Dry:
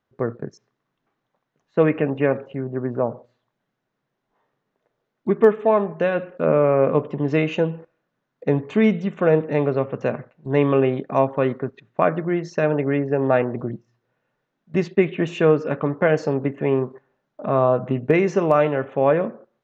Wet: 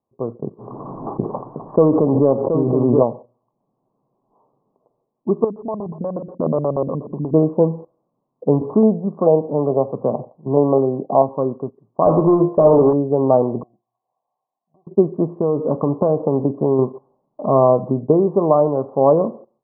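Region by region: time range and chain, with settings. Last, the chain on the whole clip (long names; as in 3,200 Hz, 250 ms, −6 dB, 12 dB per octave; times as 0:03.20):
0:00.46–0:03.03: leveller curve on the samples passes 1 + single-tap delay 724 ms −9.5 dB + background raised ahead of every attack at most 27 dB per second
0:05.44–0:07.34: downward compressor 2 to 1, threshold −31 dBFS + auto-filter low-pass square 8.3 Hz 210–2,200 Hz
0:08.61–0:11.29: parametric band 1,900 Hz −12 dB 0.23 octaves + auto-filter low-pass square 2.3 Hz 770–4,000 Hz + multiband upward and downward compressor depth 40%
0:12.06–0:12.93: parametric band 140 Hz +4 dB 0.66 octaves + mid-hump overdrive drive 25 dB, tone 1,600 Hz, clips at −6 dBFS + hum removal 69.46 Hz, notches 25
0:13.63–0:14.87: formant resonators in series a + downward compressor 12 to 1, threshold −57 dBFS
0:15.39–0:16.79: parametric band 3,000 Hz −11.5 dB 1.2 octaves + downward compressor, threshold −18 dBFS
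whole clip: Chebyshev low-pass filter 1,100 Hz, order 6; low-shelf EQ 85 Hz −7 dB; automatic gain control; level −1 dB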